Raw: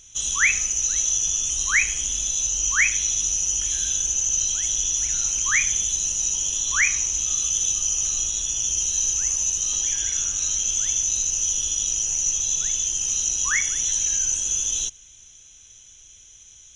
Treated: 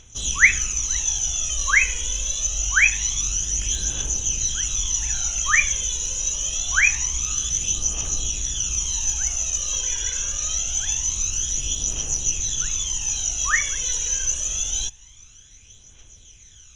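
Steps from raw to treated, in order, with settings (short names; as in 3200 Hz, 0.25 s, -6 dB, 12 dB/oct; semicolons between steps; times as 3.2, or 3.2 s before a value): phaser 0.25 Hz, delay 2.1 ms, feedback 56%; high shelf 4400 Hz -10 dB; gain +3.5 dB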